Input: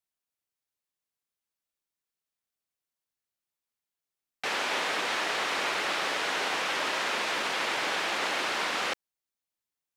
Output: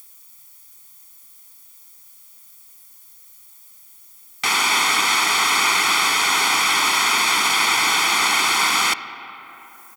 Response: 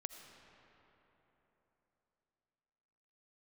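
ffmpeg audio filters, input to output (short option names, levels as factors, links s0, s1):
-filter_complex "[0:a]aecho=1:1:0.9:0.86,acompressor=mode=upward:threshold=0.00398:ratio=2.5,crystalizer=i=6.5:c=0,asplit=2[s0][s1];[1:a]atrim=start_sample=2205,lowpass=2600[s2];[s1][s2]afir=irnorm=-1:irlink=0,volume=1.19[s3];[s0][s3]amix=inputs=2:normalize=0"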